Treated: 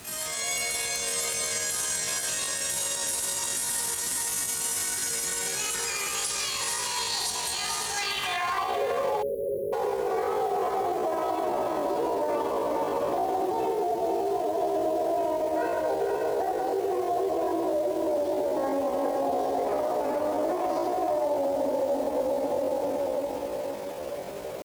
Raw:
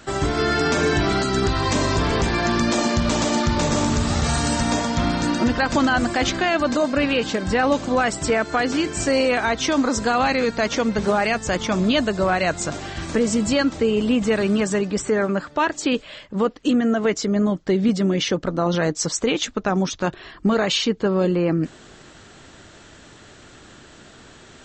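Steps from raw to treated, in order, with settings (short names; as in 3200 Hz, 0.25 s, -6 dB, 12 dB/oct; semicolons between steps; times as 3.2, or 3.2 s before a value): reverb RT60 1.6 s, pre-delay 16 ms, DRR -5 dB; band-pass sweep 5800 Hz -> 340 Hz, 7.87–8.82; diffused feedback echo 0.463 s, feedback 50%, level -4.5 dB; compressor 6:1, threshold -26 dBFS, peak gain reduction 17 dB; limiter -22.5 dBFS, peak gain reduction 8 dB; low shelf 130 Hz -6 dB; added noise pink -49 dBFS; spectral delete 9.24–9.74, 380–6300 Hz; dynamic EQ 1600 Hz, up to -5 dB, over -53 dBFS, Q 3.6; pitch shift +8 st; HPF 71 Hz; gain +4 dB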